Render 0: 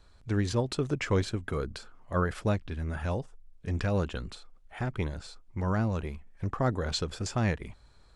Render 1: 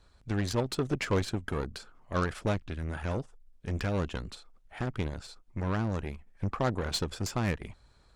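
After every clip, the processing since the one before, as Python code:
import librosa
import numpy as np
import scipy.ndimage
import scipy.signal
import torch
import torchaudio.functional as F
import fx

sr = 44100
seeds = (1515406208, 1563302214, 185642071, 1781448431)

y = fx.cheby_harmonics(x, sr, harmonics=(8,), levels_db=(-21,), full_scale_db=-15.5)
y = fx.hpss(y, sr, part='harmonic', gain_db=-3)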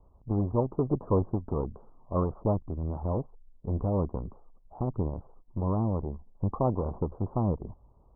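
y = scipy.signal.sosfilt(scipy.signal.butter(12, 1100.0, 'lowpass', fs=sr, output='sos'), x)
y = y * 10.0 ** (3.0 / 20.0)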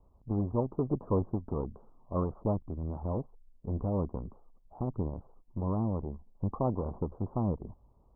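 y = fx.peak_eq(x, sr, hz=230.0, db=2.5, octaves=0.77)
y = y * 10.0 ** (-4.0 / 20.0)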